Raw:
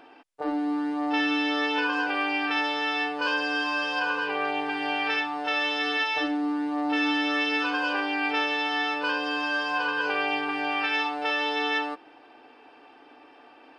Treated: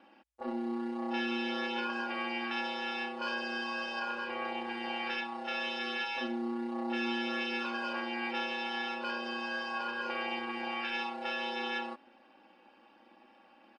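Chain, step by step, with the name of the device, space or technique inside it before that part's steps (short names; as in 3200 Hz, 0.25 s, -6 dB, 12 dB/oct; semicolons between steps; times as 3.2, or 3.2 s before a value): ring-modulated robot voice (ring modulator 58 Hz; comb 3.6 ms, depth 79%); gain -8 dB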